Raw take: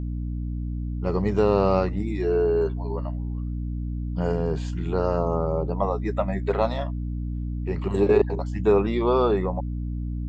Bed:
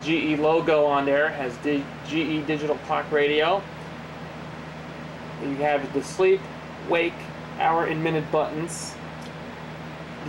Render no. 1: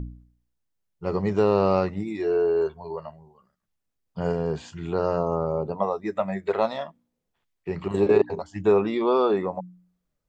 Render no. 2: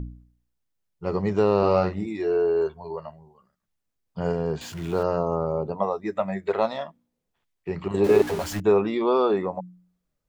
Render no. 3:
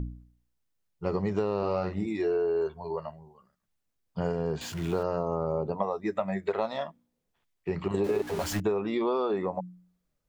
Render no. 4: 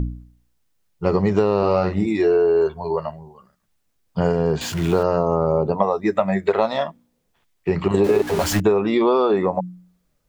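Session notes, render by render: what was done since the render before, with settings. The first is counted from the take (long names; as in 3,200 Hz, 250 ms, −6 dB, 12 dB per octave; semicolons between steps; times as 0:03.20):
hum removal 60 Hz, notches 5
0:01.58–0:02.06: double-tracking delay 44 ms −6 dB; 0:04.61–0:05.03: converter with a step at zero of −37.5 dBFS; 0:08.04–0:08.60: converter with a step at zero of −28 dBFS
downward compressor 10 to 1, threshold −24 dBFS, peak gain reduction 11.5 dB
level +10.5 dB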